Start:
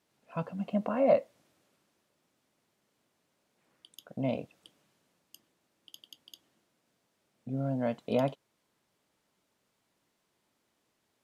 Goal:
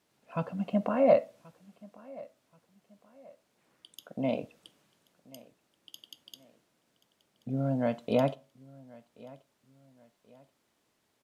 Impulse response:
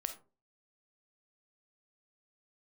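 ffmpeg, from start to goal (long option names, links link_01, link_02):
-filter_complex "[0:a]asettb=1/sr,asplit=3[link_01][link_02][link_03];[link_01]atrim=end=4.034[link_04];[link_02]atrim=start=4.03:end=4.43,asetpts=PTS-STARTPTS,afade=type=in:duration=0.004:curve=qsin,afade=type=out:start_time=0.396:duration=0.004:curve=qsin,highpass=170[link_05];[link_03]atrim=start=4.426[link_06];[link_04][link_05]acrossfade=duration=0.004:curve1=hsin:curve2=qsin[link_07];[link_07][link_06]acrossfade=duration=0.004:curve1=qsin:curve2=hsin,aecho=1:1:1081|2162:0.075|0.0262,asplit=2[link_08][link_09];[1:a]atrim=start_sample=2205[link_10];[link_09][link_10]afir=irnorm=-1:irlink=0,volume=-10dB[link_11];[link_08][link_11]amix=inputs=2:normalize=0"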